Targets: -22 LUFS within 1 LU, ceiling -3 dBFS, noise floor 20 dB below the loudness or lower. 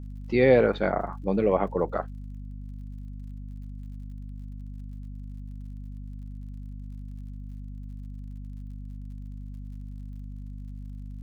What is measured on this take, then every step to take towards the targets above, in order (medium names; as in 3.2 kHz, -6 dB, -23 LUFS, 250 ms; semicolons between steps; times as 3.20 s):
tick rate 56 per s; hum 50 Hz; highest harmonic 250 Hz; hum level -36 dBFS; loudness -24.5 LUFS; peak level -6.5 dBFS; loudness target -22.0 LUFS
-> de-click; hum notches 50/100/150/200/250 Hz; trim +2.5 dB